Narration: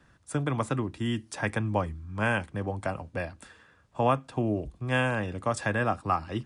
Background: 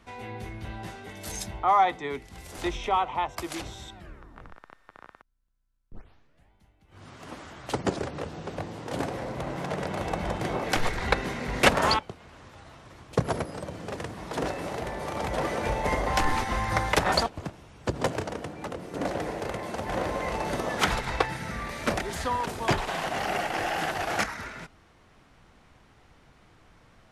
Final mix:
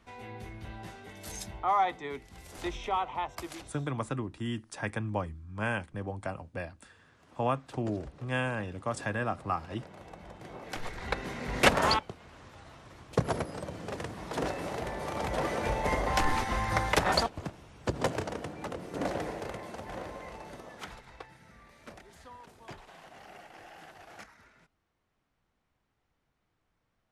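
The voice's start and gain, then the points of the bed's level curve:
3.40 s, -5.0 dB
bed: 3.44 s -5.5 dB
3.89 s -18 dB
10.33 s -18 dB
11.59 s -2.5 dB
19.12 s -2.5 dB
21.1 s -21.5 dB

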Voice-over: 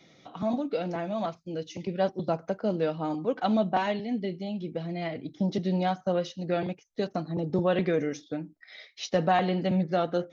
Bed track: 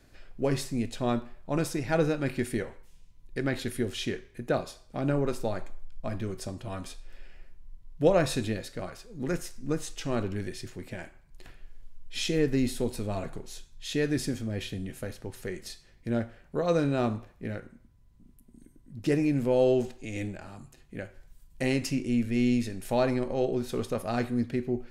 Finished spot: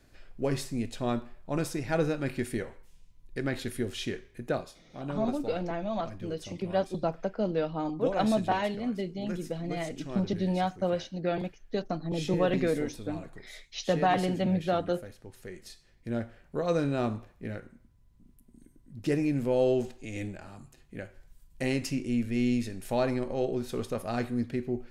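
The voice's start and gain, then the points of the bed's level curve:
4.75 s, -1.5 dB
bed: 4.49 s -2 dB
4.81 s -9 dB
15.2 s -9 dB
16.38 s -2 dB

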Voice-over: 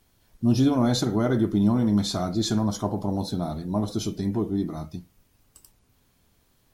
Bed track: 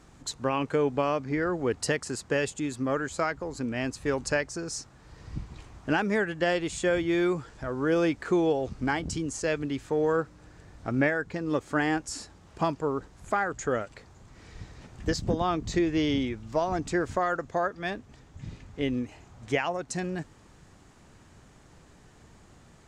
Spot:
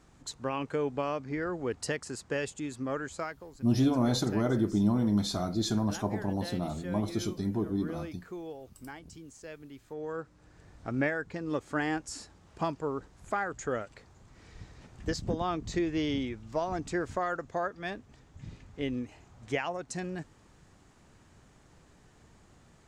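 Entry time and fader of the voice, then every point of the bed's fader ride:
3.20 s, -5.0 dB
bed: 3.1 s -5.5 dB
3.66 s -17 dB
9.72 s -17 dB
10.66 s -4.5 dB

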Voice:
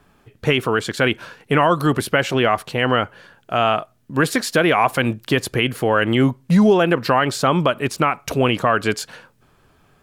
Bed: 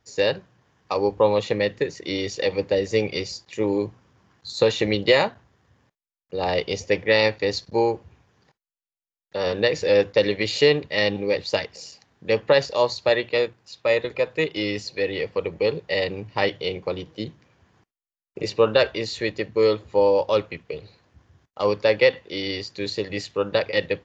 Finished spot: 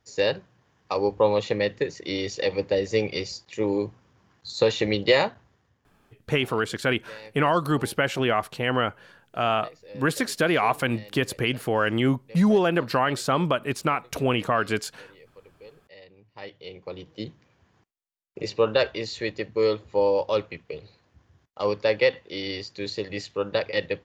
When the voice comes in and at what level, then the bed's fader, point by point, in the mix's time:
5.85 s, -6.0 dB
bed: 5.52 s -2 dB
6.35 s -25.5 dB
16.05 s -25.5 dB
17.21 s -3.5 dB

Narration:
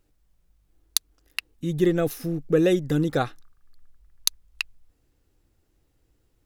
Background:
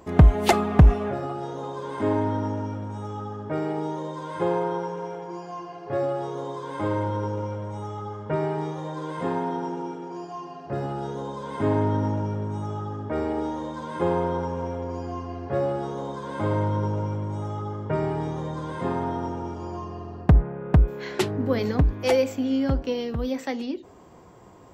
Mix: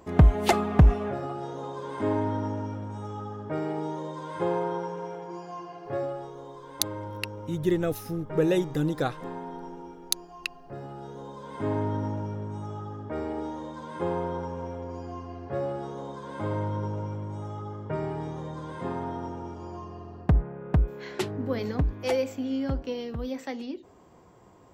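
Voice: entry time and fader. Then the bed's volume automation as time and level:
5.85 s, -4.0 dB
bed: 5.88 s -3 dB
6.35 s -10.5 dB
10.89 s -10.5 dB
11.73 s -5.5 dB

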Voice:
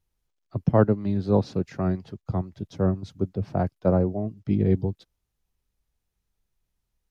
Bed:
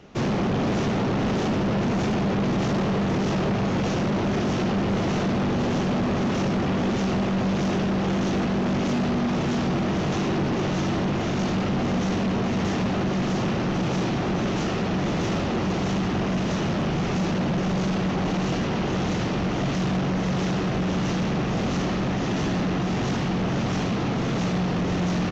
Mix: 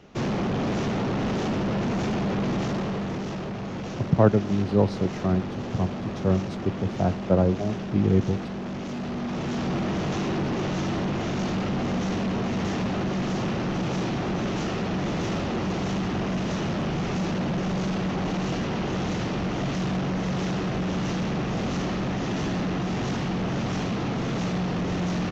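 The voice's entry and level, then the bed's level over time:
3.45 s, +0.5 dB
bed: 2.54 s -2.5 dB
3.48 s -9 dB
8.88 s -9 dB
9.75 s -2.5 dB

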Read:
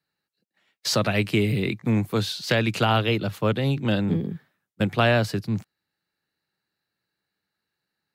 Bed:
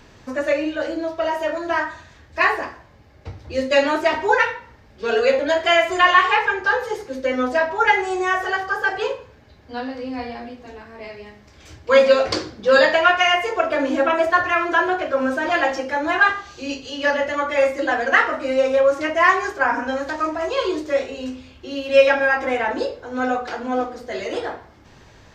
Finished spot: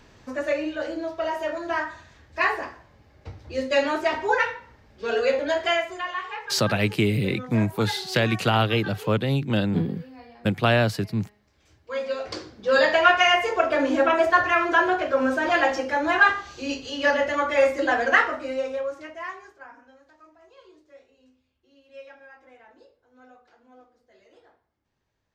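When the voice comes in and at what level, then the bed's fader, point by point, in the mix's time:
5.65 s, 0.0 dB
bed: 5.67 s -5 dB
6.06 s -17 dB
11.93 s -17 dB
13.04 s -1.5 dB
18.09 s -1.5 dB
19.95 s -30.5 dB

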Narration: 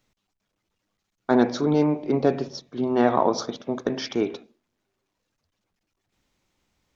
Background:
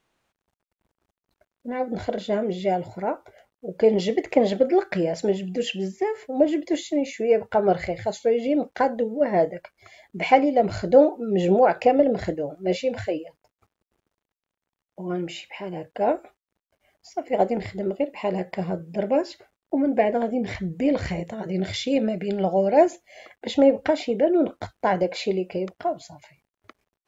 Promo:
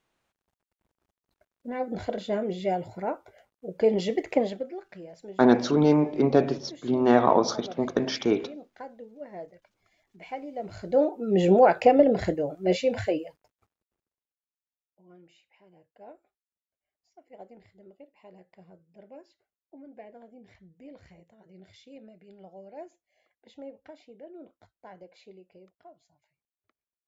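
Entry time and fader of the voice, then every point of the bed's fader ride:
4.10 s, +0.5 dB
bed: 4.36 s -4 dB
4.78 s -20 dB
10.38 s -20 dB
11.34 s 0 dB
13.3 s 0 dB
14.56 s -26 dB

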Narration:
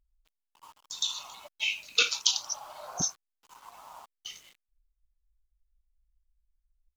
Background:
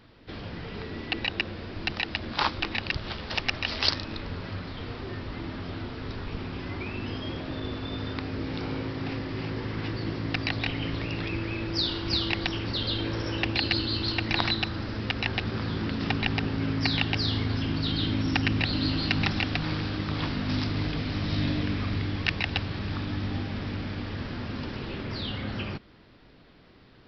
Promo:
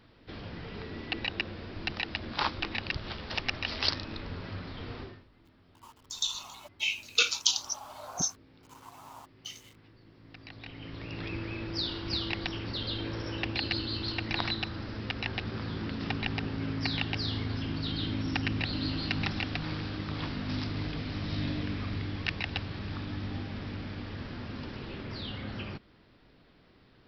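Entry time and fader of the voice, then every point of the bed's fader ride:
5.20 s, -0.5 dB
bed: 5.02 s -4 dB
5.29 s -26 dB
10.09 s -26 dB
11.26 s -5.5 dB

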